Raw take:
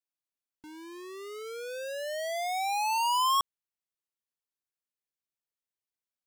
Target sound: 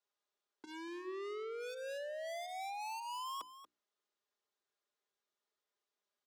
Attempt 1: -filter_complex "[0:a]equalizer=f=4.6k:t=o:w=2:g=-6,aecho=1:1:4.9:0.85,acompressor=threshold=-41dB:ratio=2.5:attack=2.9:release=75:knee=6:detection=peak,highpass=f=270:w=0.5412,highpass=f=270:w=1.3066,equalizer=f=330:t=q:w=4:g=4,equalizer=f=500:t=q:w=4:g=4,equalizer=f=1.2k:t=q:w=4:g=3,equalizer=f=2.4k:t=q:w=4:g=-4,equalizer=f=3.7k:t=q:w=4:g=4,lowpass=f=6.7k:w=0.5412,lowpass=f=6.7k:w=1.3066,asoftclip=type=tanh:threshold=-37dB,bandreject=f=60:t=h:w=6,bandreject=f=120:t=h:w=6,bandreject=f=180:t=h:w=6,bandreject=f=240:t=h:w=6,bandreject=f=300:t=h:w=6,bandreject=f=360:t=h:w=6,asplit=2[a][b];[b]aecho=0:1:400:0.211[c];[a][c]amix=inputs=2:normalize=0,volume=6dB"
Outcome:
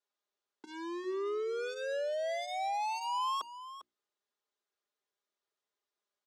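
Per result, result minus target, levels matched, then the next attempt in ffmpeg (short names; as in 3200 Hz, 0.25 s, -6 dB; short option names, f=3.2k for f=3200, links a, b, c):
echo 0.165 s late; soft clip: distortion -7 dB
-filter_complex "[0:a]equalizer=f=4.6k:t=o:w=2:g=-6,aecho=1:1:4.9:0.85,acompressor=threshold=-41dB:ratio=2.5:attack=2.9:release=75:knee=6:detection=peak,highpass=f=270:w=0.5412,highpass=f=270:w=1.3066,equalizer=f=330:t=q:w=4:g=4,equalizer=f=500:t=q:w=4:g=4,equalizer=f=1.2k:t=q:w=4:g=3,equalizer=f=2.4k:t=q:w=4:g=-4,equalizer=f=3.7k:t=q:w=4:g=4,lowpass=f=6.7k:w=0.5412,lowpass=f=6.7k:w=1.3066,asoftclip=type=tanh:threshold=-37dB,bandreject=f=60:t=h:w=6,bandreject=f=120:t=h:w=6,bandreject=f=180:t=h:w=6,bandreject=f=240:t=h:w=6,bandreject=f=300:t=h:w=6,bandreject=f=360:t=h:w=6,asplit=2[a][b];[b]aecho=0:1:235:0.211[c];[a][c]amix=inputs=2:normalize=0,volume=6dB"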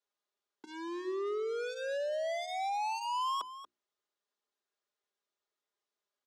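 soft clip: distortion -7 dB
-filter_complex "[0:a]equalizer=f=4.6k:t=o:w=2:g=-6,aecho=1:1:4.9:0.85,acompressor=threshold=-41dB:ratio=2.5:attack=2.9:release=75:knee=6:detection=peak,highpass=f=270:w=0.5412,highpass=f=270:w=1.3066,equalizer=f=330:t=q:w=4:g=4,equalizer=f=500:t=q:w=4:g=4,equalizer=f=1.2k:t=q:w=4:g=3,equalizer=f=2.4k:t=q:w=4:g=-4,equalizer=f=3.7k:t=q:w=4:g=4,lowpass=f=6.7k:w=0.5412,lowpass=f=6.7k:w=1.3066,asoftclip=type=tanh:threshold=-48dB,bandreject=f=60:t=h:w=6,bandreject=f=120:t=h:w=6,bandreject=f=180:t=h:w=6,bandreject=f=240:t=h:w=6,bandreject=f=300:t=h:w=6,bandreject=f=360:t=h:w=6,asplit=2[a][b];[b]aecho=0:1:235:0.211[c];[a][c]amix=inputs=2:normalize=0,volume=6dB"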